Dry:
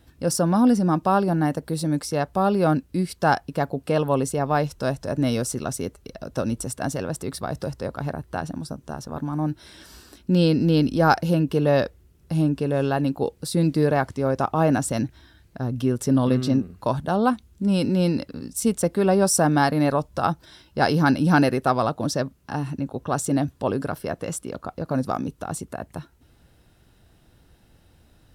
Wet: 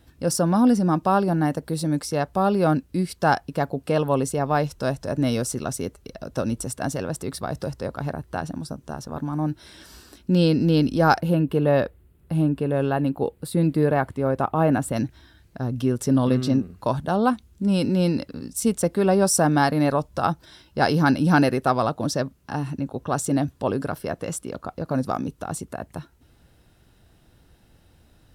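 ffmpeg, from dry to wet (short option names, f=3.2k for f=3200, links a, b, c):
-filter_complex "[0:a]asettb=1/sr,asplit=3[a][b][c];[a]atrim=end=11.204[d];[b]atrim=start=11.2:end=14.96,asetpts=PTS-STARTPTS,afade=t=in:d=0.004:c=qsin,afade=t=out:st=3.756:d=0.004:c=qsin,equalizer=f=5.7k:w=1.5:g=-14.5[e];[c]atrim=start=14.956[f];[d][e]acrossfade=d=0.004:c1=hsin:c2=qsin[g];[g][f]acrossfade=d=0.004:c1=qsin:c2=hsin"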